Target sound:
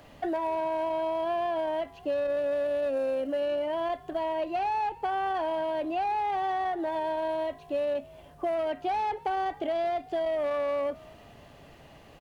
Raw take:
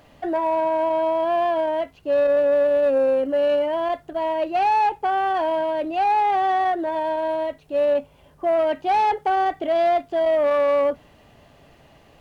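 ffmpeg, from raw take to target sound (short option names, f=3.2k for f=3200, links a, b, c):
-filter_complex "[0:a]acrossover=split=180|2500[a][b][c];[a]acompressor=threshold=-51dB:ratio=4[d];[b]acompressor=threshold=-29dB:ratio=4[e];[c]acompressor=threshold=-50dB:ratio=4[f];[d][e][f]amix=inputs=3:normalize=0,asplit=3[g][h][i];[h]adelay=224,afreqshift=62,volume=-22.5dB[j];[i]adelay=448,afreqshift=124,volume=-31.4dB[k];[g][j][k]amix=inputs=3:normalize=0"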